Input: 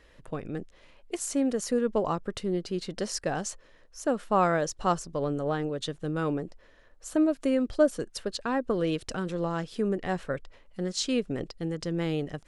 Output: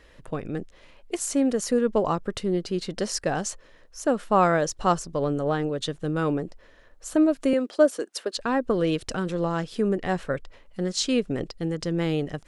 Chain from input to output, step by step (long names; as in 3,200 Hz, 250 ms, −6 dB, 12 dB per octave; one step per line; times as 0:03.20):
0:07.53–0:08.36: high-pass filter 280 Hz 24 dB per octave
level +4 dB